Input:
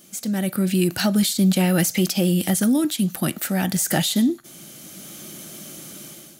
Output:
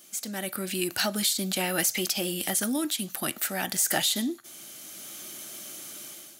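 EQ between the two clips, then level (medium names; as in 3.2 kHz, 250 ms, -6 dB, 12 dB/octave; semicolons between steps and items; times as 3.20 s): peaking EQ 170 Hz -7.5 dB 0.51 oct; bass shelf 380 Hz -11.5 dB; band-stop 520 Hz, Q 16; -1.5 dB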